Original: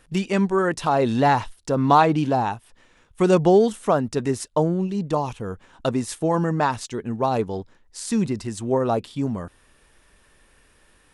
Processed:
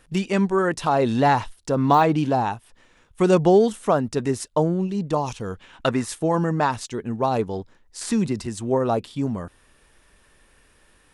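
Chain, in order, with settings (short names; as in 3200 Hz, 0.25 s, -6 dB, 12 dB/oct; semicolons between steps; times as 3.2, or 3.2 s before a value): 1.76–2.4 de-esser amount 70%; 5.26–6.07 bell 6600 Hz -> 1300 Hz +11 dB 1.3 oct; 8.01–8.46 three-band squash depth 40%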